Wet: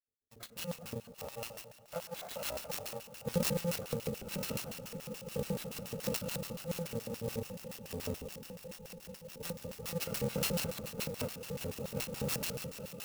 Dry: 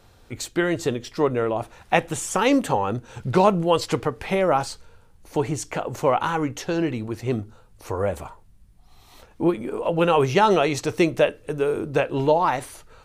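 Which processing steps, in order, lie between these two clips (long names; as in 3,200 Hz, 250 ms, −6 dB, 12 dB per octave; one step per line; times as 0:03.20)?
samples in bit-reversed order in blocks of 128 samples
spectral tilt −3 dB per octave
echo that builds up and dies away 199 ms, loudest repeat 8, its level −16.5 dB
noise reduction from a noise print of the clip's start 16 dB
noise gate with hold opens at −32 dBFS
convolution reverb RT60 2.0 s, pre-delay 69 ms, DRR 11.5 dB
auto-filter band-pass square 7 Hz 440–4,100 Hz
0:01.12–0:03.26: low shelf with overshoot 480 Hz −10 dB, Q 3
converter with an unsteady clock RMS 0.045 ms
level +1 dB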